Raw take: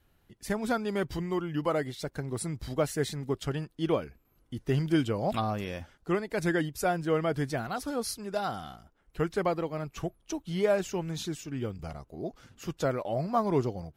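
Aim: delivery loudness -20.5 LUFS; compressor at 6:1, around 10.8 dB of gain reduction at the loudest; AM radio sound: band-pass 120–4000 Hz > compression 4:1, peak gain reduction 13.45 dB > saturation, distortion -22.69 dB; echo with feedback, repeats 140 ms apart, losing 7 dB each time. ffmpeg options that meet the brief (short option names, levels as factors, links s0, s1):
-af "acompressor=threshold=0.0224:ratio=6,highpass=120,lowpass=4000,aecho=1:1:140|280|420|560|700:0.447|0.201|0.0905|0.0407|0.0183,acompressor=threshold=0.00501:ratio=4,asoftclip=threshold=0.0141,volume=28.2"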